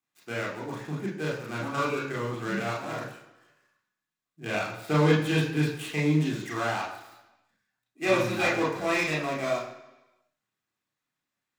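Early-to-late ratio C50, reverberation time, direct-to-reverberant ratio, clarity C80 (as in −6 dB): 5.5 dB, 1.0 s, −4.0 dB, 8.0 dB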